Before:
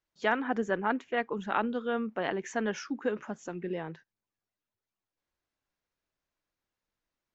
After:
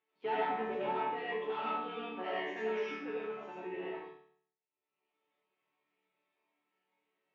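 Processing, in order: octave divider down 2 oct, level +2 dB; 1.20–3.74 s: tilt EQ +2.5 dB/octave; waveshaping leveller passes 3; upward compressor, threshold -45 dBFS; cabinet simulation 270–3100 Hz, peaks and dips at 280 Hz +3 dB, 410 Hz +8 dB, 600 Hz -6 dB, 860 Hz +6 dB, 1.5 kHz -7 dB, 2.5 kHz +5 dB; chord resonator D3 major, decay 0.61 s; reverberation RT60 0.45 s, pre-delay 55 ms, DRR -4.5 dB

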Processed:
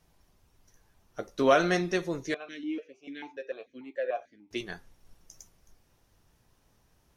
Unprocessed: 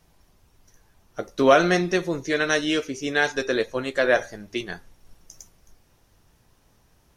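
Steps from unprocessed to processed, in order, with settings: 2.34–4.51 s: stepped vowel filter 6.8 Hz; trim -6 dB

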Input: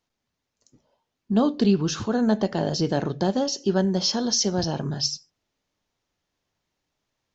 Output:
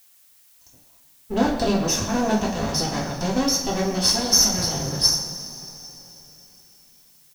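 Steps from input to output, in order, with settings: comb filter that takes the minimum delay 1.1 ms; peaking EQ 6 kHz +11 dB 0.32 oct; speakerphone echo 130 ms, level -11 dB; two-slope reverb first 0.33 s, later 3.7 s, from -18 dB, DRR -3 dB; added noise blue -54 dBFS; trim -1 dB

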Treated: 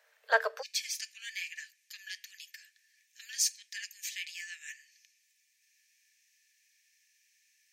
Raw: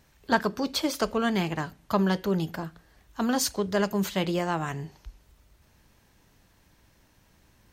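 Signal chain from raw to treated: rippled Chebyshev high-pass 440 Hz, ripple 9 dB, from 0.61 s 1.7 kHz; trim +2 dB

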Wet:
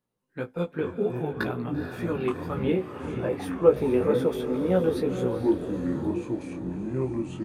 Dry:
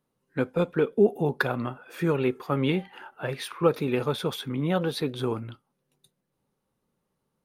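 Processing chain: 2.64–5.26 s: graphic EQ 250/500/4000 Hz +4/+10/-7 dB; chorus 1.9 Hz, delay 16.5 ms, depth 2.7 ms; doubling 16 ms -12.5 dB; echo that smears into a reverb 459 ms, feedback 48%, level -8.5 dB; ever faster or slower copies 292 ms, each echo -6 st, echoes 3, each echo -6 dB; trim -2.5 dB

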